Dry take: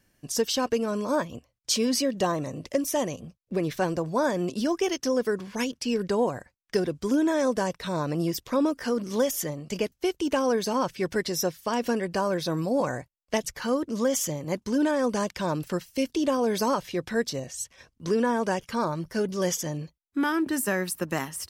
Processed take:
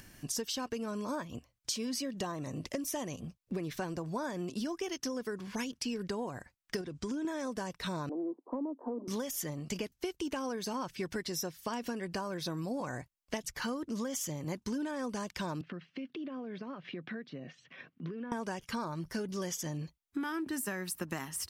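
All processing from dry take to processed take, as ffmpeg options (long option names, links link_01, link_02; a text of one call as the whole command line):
ffmpeg -i in.wav -filter_complex "[0:a]asettb=1/sr,asplit=3[link_01][link_02][link_03];[link_01]atrim=end=6.814[link_04];[link_02]atrim=start=6.81:end=7.25,asetpts=PTS-STARTPTS,afade=type=in:duration=0.004:curve=qsin,afade=type=out:start_time=0.436:duration=0.004:curve=qsin,lowpass=frequency=9000:width=0.5412,lowpass=frequency=9000:width=1.3066,acompressor=threshold=-31dB:ratio=2.5:attack=3.2:release=140:knee=1:detection=peak[link_05];[link_03]atrim=start=7.246[link_06];[link_04][link_05]acrossfade=duration=0.004:curve1=hsin:curve2=qsin[link_07];[link_07][link_06]acrossfade=duration=0.004:curve1=qsin:curve2=hsin,asettb=1/sr,asplit=3[link_08][link_09][link_10];[link_08]atrim=end=8.094[link_11];[link_09]atrim=start=8.09:end=9.08,asetpts=PTS-STARTPTS,afade=type=in:duration=0.004:curve=qsin,afade=type=out:start_time=0.986:duration=0.004:curve=qsin,asuperpass=centerf=490:order=12:qfactor=0.66,acompressor=threshold=-26dB:ratio=2:attack=3.2:release=140:knee=1:detection=peak[link_12];[link_10]atrim=start=9.076[link_13];[link_11][link_12]acrossfade=duration=0.004:curve1=hsin:curve2=qsin[link_14];[link_14][link_13]acrossfade=duration=0.004:curve1=qsin:curve2=hsin,asettb=1/sr,asplit=3[link_15][link_16][link_17];[link_15]atrim=end=15.614[link_18];[link_16]atrim=start=15.61:end=18.32,asetpts=PTS-STARTPTS,afade=type=in:duration=0.004:curve=qsin,afade=type=out:start_time=2.706:duration=0.004:curve=qsin,acompressor=threshold=-37dB:ratio=10:attack=3.2:release=140:knee=1:detection=peak,highpass=frequency=150:width=0.5412,highpass=frequency=150:width=1.3066,equalizer=frequency=160:width_type=q:width=4:gain=5,equalizer=frequency=260:width_type=q:width=4:gain=3,equalizer=frequency=910:width_type=q:width=4:gain=-9,lowpass=frequency=3000:width=0.5412,lowpass=frequency=3000:width=1.3066[link_19];[link_17]atrim=start=18.316[link_20];[link_18][link_19]acrossfade=duration=0.004:curve1=hsin:curve2=qsin[link_21];[link_21][link_20]acrossfade=duration=0.004:curve1=qsin:curve2=hsin,acompressor=mode=upward:threshold=-43dB:ratio=2.5,equalizer=frequency=530:width_type=o:width=0.71:gain=-5.5,acompressor=threshold=-33dB:ratio=10" out.wav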